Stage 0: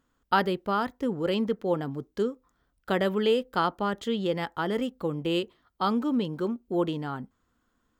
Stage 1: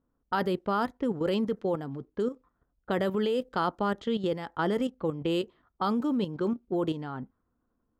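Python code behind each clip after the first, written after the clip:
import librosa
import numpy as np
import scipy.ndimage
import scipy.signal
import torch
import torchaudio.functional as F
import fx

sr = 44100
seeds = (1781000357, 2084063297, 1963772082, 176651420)

y = fx.env_lowpass(x, sr, base_hz=770.0, full_db=-23.5)
y = fx.dynamic_eq(y, sr, hz=2600.0, q=1.0, threshold_db=-43.0, ratio=4.0, max_db=-4)
y = fx.level_steps(y, sr, step_db=10)
y = F.gain(torch.from_numpy(y), 3.5).numpy()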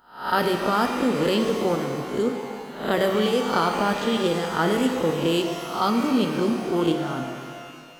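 y = fx.spec_swells(x, sr, rise_s=0.47)
y = fx.high_shelf(y, sr, hz=5000.0, db=10.5)
y = fx.rev_shimmer(y, sr, seeds[0], rt60_s=2.2, semitones=12, shimmer_db=-8, drr_db=4.0)
y = F.gain(torch.from_numpy(y), 4.0).numpy()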